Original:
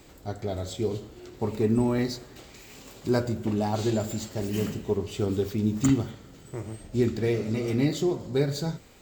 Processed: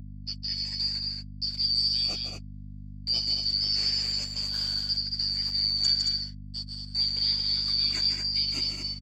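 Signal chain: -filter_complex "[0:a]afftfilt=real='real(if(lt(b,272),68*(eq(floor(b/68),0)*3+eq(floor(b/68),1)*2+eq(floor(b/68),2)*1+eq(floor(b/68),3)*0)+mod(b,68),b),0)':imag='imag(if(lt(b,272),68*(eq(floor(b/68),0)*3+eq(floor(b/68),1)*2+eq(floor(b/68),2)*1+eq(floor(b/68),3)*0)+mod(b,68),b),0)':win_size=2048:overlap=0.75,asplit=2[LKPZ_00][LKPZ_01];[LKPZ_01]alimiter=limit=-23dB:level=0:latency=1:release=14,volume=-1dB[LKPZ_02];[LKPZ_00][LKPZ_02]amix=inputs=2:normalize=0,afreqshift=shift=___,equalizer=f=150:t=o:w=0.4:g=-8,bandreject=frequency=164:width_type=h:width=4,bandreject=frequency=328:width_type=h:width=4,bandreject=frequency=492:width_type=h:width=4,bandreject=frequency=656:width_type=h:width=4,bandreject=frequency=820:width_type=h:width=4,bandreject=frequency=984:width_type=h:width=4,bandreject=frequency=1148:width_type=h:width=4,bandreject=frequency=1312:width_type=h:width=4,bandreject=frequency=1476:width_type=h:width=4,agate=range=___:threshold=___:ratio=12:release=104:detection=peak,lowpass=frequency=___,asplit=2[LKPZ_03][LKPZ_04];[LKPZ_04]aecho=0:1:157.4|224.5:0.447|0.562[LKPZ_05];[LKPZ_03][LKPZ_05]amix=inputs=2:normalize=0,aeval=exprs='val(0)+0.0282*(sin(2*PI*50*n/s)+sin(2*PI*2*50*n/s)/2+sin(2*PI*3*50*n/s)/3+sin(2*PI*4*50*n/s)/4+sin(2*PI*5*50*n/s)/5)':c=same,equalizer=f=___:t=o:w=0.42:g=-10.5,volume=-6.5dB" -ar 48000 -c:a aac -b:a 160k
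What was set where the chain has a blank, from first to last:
-26, -43dB, -30dB, 8600, 61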